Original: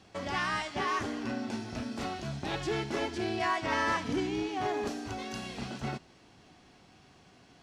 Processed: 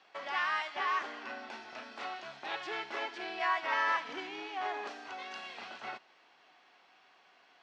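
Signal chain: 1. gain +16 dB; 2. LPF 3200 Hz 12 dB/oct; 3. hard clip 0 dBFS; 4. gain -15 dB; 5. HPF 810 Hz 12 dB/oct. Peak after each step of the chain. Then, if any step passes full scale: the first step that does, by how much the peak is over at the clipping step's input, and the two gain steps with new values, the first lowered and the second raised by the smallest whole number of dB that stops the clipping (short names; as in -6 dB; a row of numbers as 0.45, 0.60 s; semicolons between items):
-2.5, -2.5, -2.5, -17.5, -19.5 dBFS; no overload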